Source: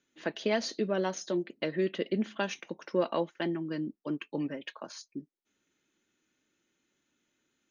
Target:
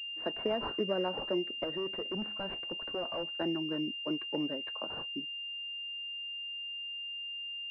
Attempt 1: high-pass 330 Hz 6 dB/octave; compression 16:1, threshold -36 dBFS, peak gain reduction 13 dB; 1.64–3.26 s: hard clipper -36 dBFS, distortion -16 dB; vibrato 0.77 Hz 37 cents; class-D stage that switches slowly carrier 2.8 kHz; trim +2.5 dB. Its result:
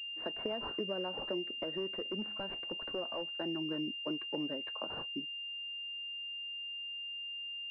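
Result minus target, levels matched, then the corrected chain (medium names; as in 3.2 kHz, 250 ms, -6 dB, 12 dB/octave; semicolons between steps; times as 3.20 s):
compression: peak gain reduction +6.5 dB
high-pass 330 Hz 6 dB/octave; compression 16:1, threshold -29 dBFS, peak gain reduction 6.5 dB; 1.64–3.26 s: hard clipper -36 dBFS, distortion -10 dB; vibrato 0.77 Hz 37 cents; class-D stage that switches slowly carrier 2.8 kHz; trim +2.5 dB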